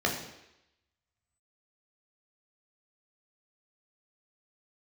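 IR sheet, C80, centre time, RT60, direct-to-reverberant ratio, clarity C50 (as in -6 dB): 9.0 dB, 31 ms, 0.85 s, -1.0 dB, 6.0 dB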